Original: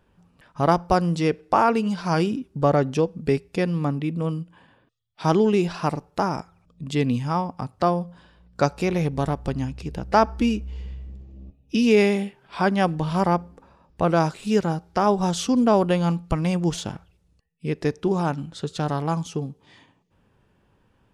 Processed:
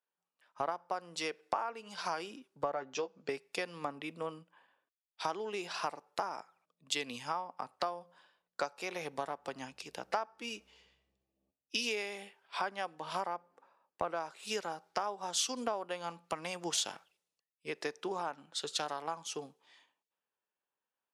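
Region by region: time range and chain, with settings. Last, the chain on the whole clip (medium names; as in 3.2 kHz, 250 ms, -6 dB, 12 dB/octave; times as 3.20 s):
2.74–3.29 s: steep low-pass 7.3 kHz 96 dB/octave + doubling 15 ms -7.5 dB
whole clip: high-pass 640 Hz 12 dB/octave; compression 16:1, threshold -33 dBFS; three bands expanded up and down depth 70%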